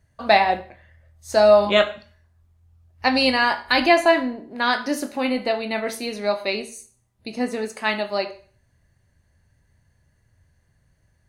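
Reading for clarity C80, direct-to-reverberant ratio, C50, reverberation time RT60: 18.0 dB, 8.5 dB, 13.5 dB, 0.40 s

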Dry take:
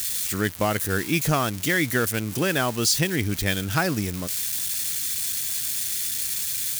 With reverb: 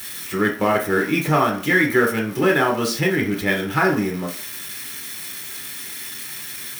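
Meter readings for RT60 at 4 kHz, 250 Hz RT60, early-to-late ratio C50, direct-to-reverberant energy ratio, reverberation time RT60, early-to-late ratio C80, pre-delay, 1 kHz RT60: 0.45 s, 0.35 s, 8.0 dB, −1.5 dB, 0.45 s, 13.5 dB, 3 ms, 0.50 s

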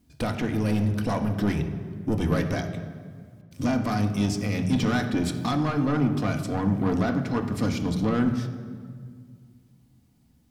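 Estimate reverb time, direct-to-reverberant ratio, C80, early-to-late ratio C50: 1.9 s, 4.0 dB, 10.0 dB, 9.0 dB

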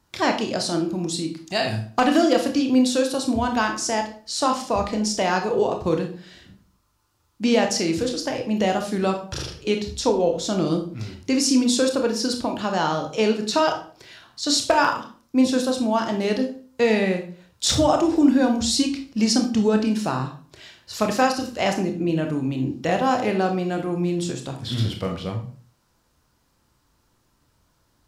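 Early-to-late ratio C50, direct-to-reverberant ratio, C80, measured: 8.5 dB, 4.0 dB, 13.5 dB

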